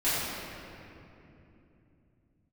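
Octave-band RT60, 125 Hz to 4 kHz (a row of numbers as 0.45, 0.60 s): 4.9, 4.6, 3.3, 2.6, 2.5, 1.7 s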